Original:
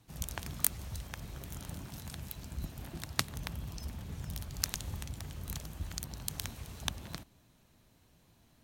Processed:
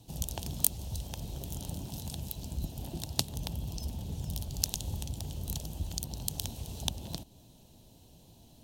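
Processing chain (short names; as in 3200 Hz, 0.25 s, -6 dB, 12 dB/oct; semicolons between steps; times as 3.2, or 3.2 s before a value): band shelf 1600 Hz -15.5 dB 1.3 oct; in parallel at +1 dB: compressor, threshold -50 dBFS, peak gain reduction 26 dB; on the sum: gain +2 dB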